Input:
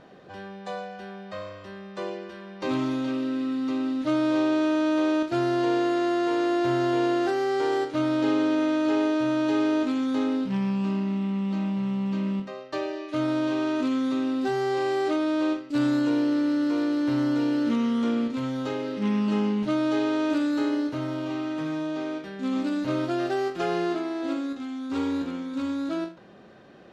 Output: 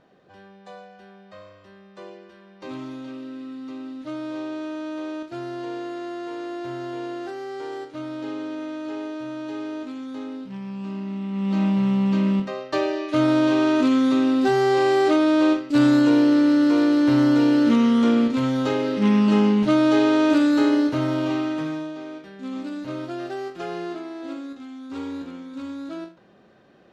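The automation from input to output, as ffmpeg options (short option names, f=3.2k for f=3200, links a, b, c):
-af "volume=7dB,afade=t=in:st=10.63:d=0.68:silence=0.473151,afade=t=in:st=11.31:d=0.32:silence=0.375837,afade=t=out:st=21.27:d=0.68:silence=0.266073"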